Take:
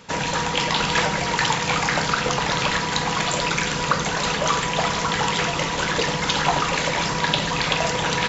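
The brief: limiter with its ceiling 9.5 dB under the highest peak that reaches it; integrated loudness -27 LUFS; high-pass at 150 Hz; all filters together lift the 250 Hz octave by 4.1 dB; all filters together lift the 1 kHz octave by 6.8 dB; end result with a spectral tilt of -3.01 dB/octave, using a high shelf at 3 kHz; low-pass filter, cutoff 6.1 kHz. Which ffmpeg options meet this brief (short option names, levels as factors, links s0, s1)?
-af "highpass=150,lowpass=6100,equalizer=f=250:t=o:g=7,equalizer=f=1000:t=o:g=7,highshelf=f=3000:g=4.5,volume=0.398,alimiter=limit=0.141:level=0:latency=1"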